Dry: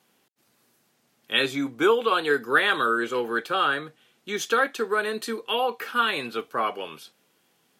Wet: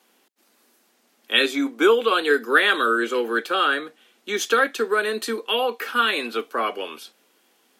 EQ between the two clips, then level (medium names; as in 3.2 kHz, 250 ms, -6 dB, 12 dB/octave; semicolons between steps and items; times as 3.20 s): dynamic bell 880 Hz, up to -6 dB, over -37 dBFS, Q 1.8; steep high-pass 220 Hz 36 dB/octave; +4.5 dB